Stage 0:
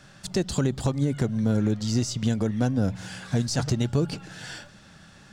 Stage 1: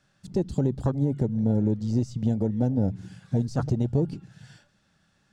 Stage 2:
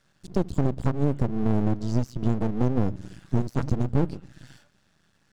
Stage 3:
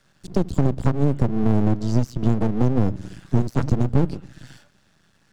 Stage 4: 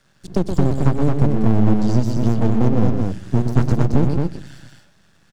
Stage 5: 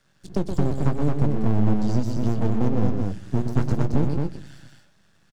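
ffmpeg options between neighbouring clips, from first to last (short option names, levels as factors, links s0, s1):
-af "afwtdn=0.0355"
-af "aeval=exprs='max(val(0),0)':c=same,volume=1.68"
-filter_complex "[0:a]acrossover=split=200|3000[s0][s1][s2];[s1]acompressor=threshold=0.0631:ratio=6[s3];[s0][s3][s2]amix=inputs=3:normalize=0,volume=1.78"
-af "aecho=1:1:122.4|221.6:0.447|0.631,volume=1.19"
-filter_complex "[0:a]asplit=2[s0][s1];[s1]adelay=20,volume=0.224[s2];[s0][s2]amix=inputs=2:normalize=0,volume=0.531"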